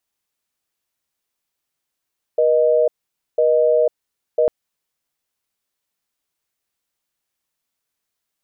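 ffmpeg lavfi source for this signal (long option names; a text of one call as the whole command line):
ffmpeg -f lavfi -i "aevalsrc='0.178*(sin(2*PI*480*t)+sin(2*PI*620*t))*clip(min(mod(t,1),0.5-mod(t,1))/0.005,0,1)':duration=2.1:sample_rate=44100" out.wav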